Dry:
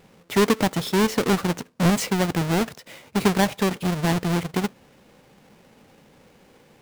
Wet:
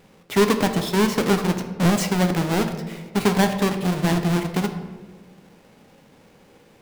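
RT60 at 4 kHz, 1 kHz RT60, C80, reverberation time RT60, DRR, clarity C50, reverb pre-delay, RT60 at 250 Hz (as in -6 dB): 0.80 s, 1.3 s, 10.5 dB, 1.5 s, 6.0 dB, 9.0 dB, 6 ms, 2.0 s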